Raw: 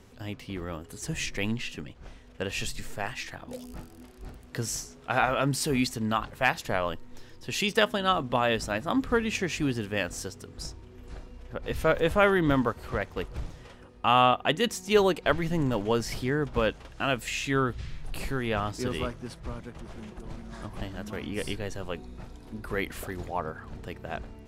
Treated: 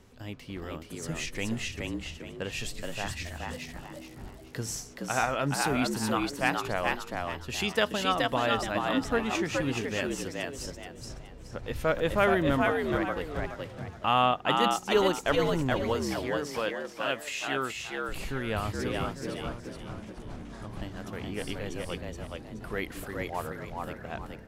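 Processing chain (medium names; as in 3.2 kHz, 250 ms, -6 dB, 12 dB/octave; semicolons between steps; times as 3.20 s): 15.94–18.09 s: high-pass 440 Hz 6 dB/octave; frequency-shifting echo 424 ms, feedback 32%, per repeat +71 Hz, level -3 dB; trim -3 dB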